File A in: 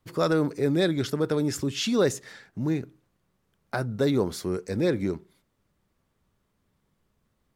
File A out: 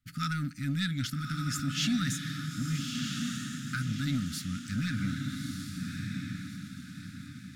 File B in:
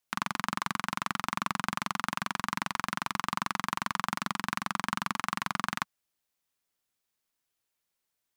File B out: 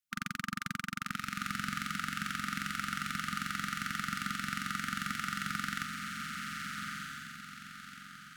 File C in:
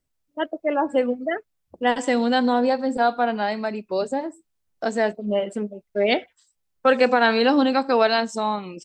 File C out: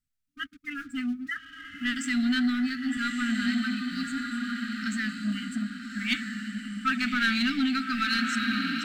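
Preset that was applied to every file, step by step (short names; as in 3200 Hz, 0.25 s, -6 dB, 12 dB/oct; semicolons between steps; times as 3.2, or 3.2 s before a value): diffused feedback echo 1.243 s, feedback 42%, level -4 dB; sample leveller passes 1; brick-wall FIR band-stop 280–1200 Hz; in parallel at -7 dB: soft clip -20.5 dBFS; on the sum: gain -8 dB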